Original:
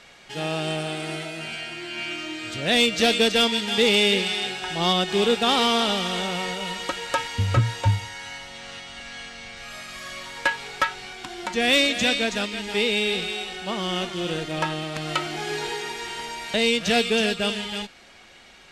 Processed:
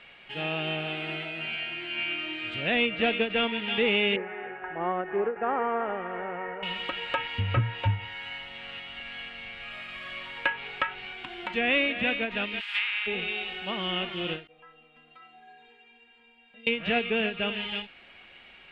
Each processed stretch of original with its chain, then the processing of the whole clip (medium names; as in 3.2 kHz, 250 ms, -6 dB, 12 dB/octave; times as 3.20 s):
4.16–6.63 s: elliptic low-pass 1.8 kHz, stop band 80 dB + resonant low shelf 280 Hz -6 dB, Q 1.5
12.59–13.06 s: spectral contrast reduction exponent 0.54 + high-pass 1.2 kHz 24 dB/octave
14.47–16.67 s: treble shelf 2.5 kHz -12 dB + compression 4:1, threshold -26 dBFS + inharmonic resonator 240 Hz, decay 0.52 s, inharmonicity 0.008
whole clip: resonant high shelf 4.1 kHz -14 dB, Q 3; low-pass that closes with the level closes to 2.2 kHz, closed at -17 dBFS; endings held to a fixed fall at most 190 dB/s; trim -5.5 dB